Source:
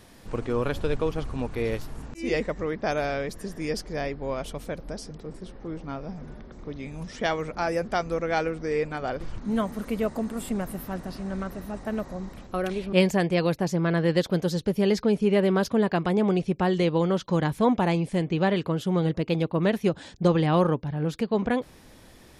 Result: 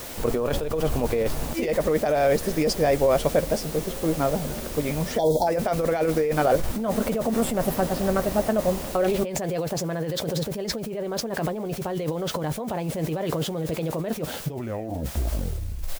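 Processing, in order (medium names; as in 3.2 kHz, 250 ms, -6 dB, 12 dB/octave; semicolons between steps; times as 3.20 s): tape stop on the ending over 2.60 s; tempo 1.4×; added noise white -47 dBFS; time-frequency box 5.18–5.47 s, 1–3.2 kHz -28 dB; compressor with a negative ratio -31 dBFS, ratio -1; peaking EQ 590 Hz +8.5 dB 1 oct; doubling 13 ms -11 dB; trim +3 dB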